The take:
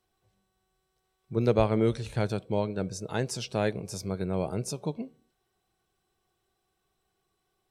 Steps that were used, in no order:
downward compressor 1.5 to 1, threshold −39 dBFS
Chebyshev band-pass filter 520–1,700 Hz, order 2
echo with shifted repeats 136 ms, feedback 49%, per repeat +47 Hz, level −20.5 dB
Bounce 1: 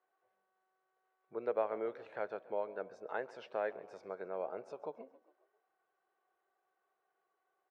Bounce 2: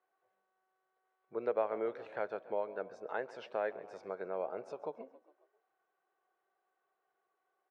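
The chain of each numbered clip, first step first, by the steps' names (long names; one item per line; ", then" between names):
downward compressor, then echo with shifted repeats, then Chebyshev band-pass filter
echo with shifted repeats, then Chebyshev band-pass filter, then downward compressor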